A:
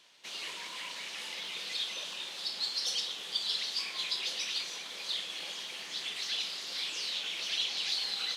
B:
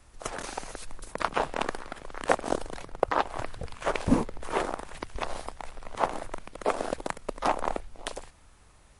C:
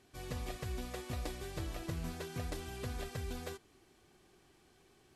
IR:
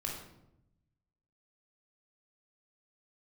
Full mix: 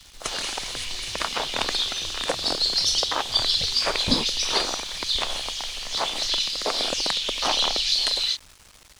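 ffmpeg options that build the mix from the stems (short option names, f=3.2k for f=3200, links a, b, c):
-filter_complex "[0:a]highshelf=f=3.7k:g=10.5,volume=-8dB,asplit=2[a][b];[b]volume=-5dB[c];[1:a]alimiter=limit=-13dB:level=0:latency=1:release=196,acrusher=bits=8:mix=0:aa=0.000001,volume=0dB[d];[2:a]adelay=450,volume=-6.5dB[e];[3:a]atrim=start_sample=2205[f];[c][f]afir=irnorm=-1:irlink=0[g];[a][d][e][g]amix=inputs=4:normalize=0,equalizer=f=4.5k:w=0.5:g=10"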